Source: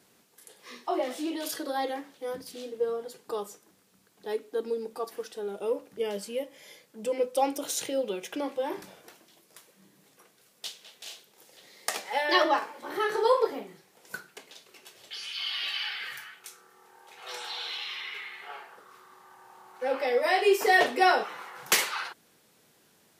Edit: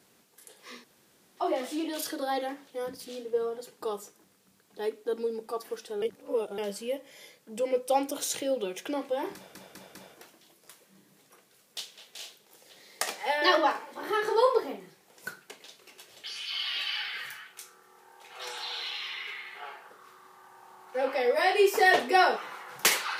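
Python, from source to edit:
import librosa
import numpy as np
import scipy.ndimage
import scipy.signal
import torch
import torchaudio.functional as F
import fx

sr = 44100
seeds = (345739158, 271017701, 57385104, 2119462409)

y = fx.edit(x, sr, fx.insert_room_tone(at_s=0.84, length_s=0.53),
    fx.reverse_span(start_s=5.49, length_s=0.56),
    fx.stutter(start_s=8.82, slice_s=0.2, count=4), tone=tone)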